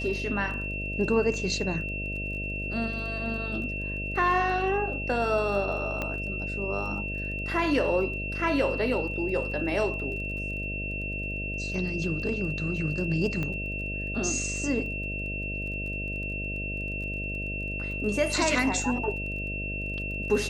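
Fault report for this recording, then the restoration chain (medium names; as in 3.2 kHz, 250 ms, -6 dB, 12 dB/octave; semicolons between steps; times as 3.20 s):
buzz 50 Hz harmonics 13 -35 dBFS
crackle 21 per s -38 dBFS
whine 2.7 kHz -33 dBFS
6.02 s: pop -17 dBFS
13.43 s: pop -19 dBFS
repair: de-click; de-hum 50 Hz, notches 13; band-stop 2.7 kHz, Q 30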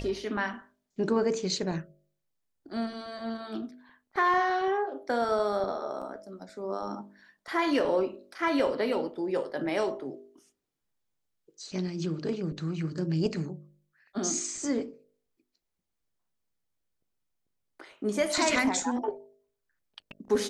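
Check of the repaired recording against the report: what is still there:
6.02 s: pop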